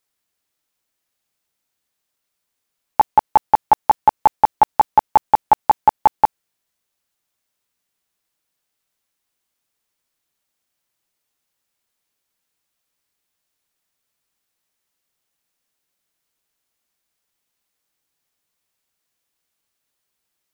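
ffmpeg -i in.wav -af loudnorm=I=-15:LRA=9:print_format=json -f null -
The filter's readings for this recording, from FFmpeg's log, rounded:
"input_i" : "-17.4",
"input_tp" : "-3.4",
"input_lra" : "9.2",
"input_thresh" : "-27.4",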